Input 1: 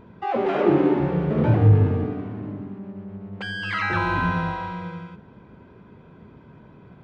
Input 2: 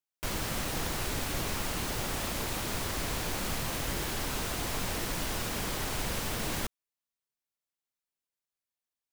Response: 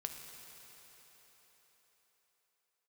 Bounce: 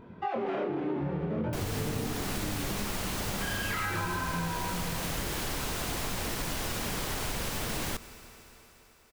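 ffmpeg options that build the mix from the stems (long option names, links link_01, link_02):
-filter_complex "[0:a]alimiter=limit=-15dB:level=0:latency=1:release=29,flanger=delay=22.5:depth=7.9:speed=0.65,volume=1.5dB[link_01];[1:a]adelay=1300,volume=0dB,asplit=2[link_02][link_03];[link_03]volume=-6dB[link_04];[2:a]atrim=start_sample=2205[link_05];[link_04][link_05]afir=irnorm=-1:irlink=0[link_06];[link_01][link_02][link_06]amix=inputs=3:normalize=0,acompressor=threshold=-29dB:ratio=6"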